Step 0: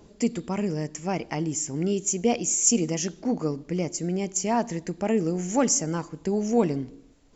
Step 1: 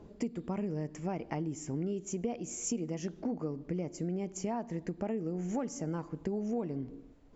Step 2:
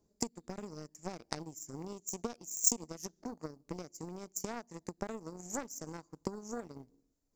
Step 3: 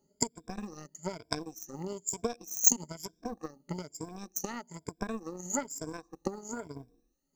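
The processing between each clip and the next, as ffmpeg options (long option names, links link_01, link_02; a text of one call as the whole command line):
ffmpeg -i in.wav -af "lowpass=frequency=1200:poles=1,acompressor=threshold=-32dB:ratio=6" out.wav
ffmpeg -i in.wav -af "aeval=exprs='0.0841*(cos(1*acos(clip(val(0)/0.0841,-1,1)))-cos(1*PI/2))+0.0266*(cos(3*acos(clip(val(0)/0.0841,-1,1)))-cos(3*PI/2))':channel_layout=same,aexciter=amount=11.4:drive=2.3:freq=4500,volume=2.5dB" out.wav
ffmpeg -i in.wav -filter_complex "[0:a]afftfilt=real='re*pow(10,20/40*sin(2*PI*(1.7*log(max(b,1)*sr/1024/100)/log(2)-(1.1)*(pts-256)/sr)))':imag='im*pow(10,20/40*sin(2*PI*(1.7*log(max(b,1)*sr/1024/100)/log(2)-(1.1)*(pts-256)/sr)))':win_size=1024:overlap=0.75,asplit=2[link_01][link_02];[link_02]aeval=exprs='sgn(val(0))*max(abs(val(0))-0.00708,0)':channel_layout=same,volume=-12dB[link_03];[link_01][link_03]amix=inputs=2:normalize=0,volume=-1dB" out.wav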